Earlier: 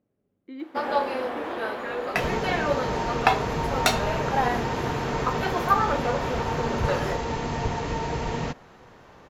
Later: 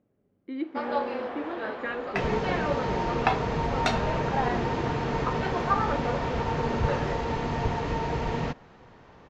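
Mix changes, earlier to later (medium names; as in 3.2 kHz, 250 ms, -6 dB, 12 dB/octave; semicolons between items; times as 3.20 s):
speech +4.5 dB; first sound -4.0 dB; master: add distance through air 110 m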